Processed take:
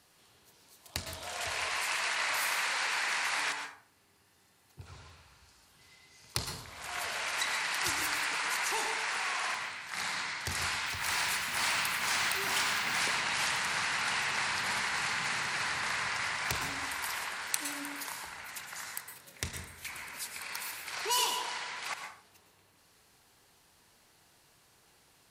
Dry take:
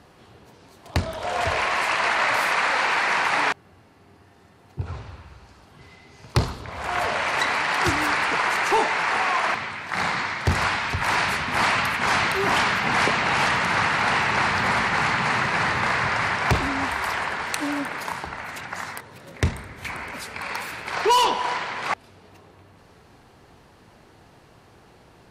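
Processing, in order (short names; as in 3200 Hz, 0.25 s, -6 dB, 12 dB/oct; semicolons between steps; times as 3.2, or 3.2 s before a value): 10.86–12.99 G.711 law mismatch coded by mu; pre-emphasis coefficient 0.9; plate-style reverb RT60 0.5 s, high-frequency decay 0.6×, pre-delay 0.1 s, DRR 4.5 dB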